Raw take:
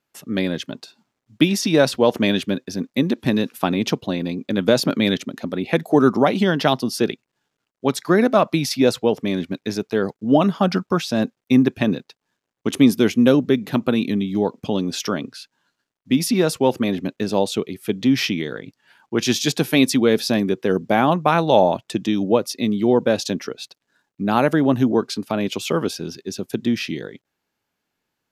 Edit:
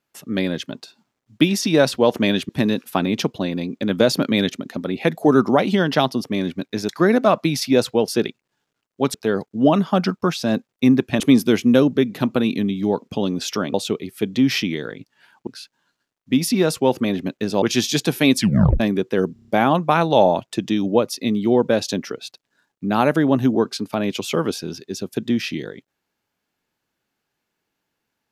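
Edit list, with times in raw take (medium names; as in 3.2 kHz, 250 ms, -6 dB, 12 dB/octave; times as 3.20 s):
2.49–3.17 s: delete
6.92–7.98 s: swap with 9.17–9.82 s
11.88–12.72 s: delete
17.41–19.14 s: move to 15.26 s
19.89 s: tape stop 0.43 s
20.85 s: stutter 0.03 s, 6 plays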